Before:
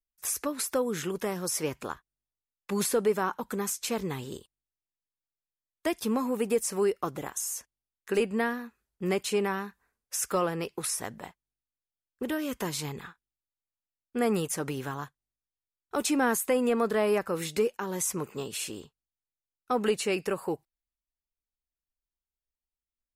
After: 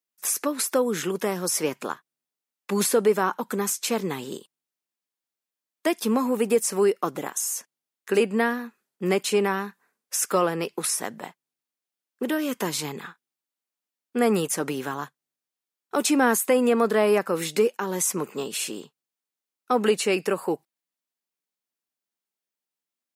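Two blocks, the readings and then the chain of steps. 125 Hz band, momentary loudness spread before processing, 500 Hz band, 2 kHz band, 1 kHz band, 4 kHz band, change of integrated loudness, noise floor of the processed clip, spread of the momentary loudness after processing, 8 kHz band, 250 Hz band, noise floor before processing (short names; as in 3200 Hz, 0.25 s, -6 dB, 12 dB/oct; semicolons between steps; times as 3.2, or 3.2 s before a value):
+2.5 dB, 13 LU, +5.5 dB, +5.5 dB, +5.5 dB, +5.5 dB, +5.5 dB, under -85 dBFS, 13 LU, +5.5 dB, +5.0 dB, under -85 dBFS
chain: HPF 170 Hz 24 dB/oct; gain +5.5 dB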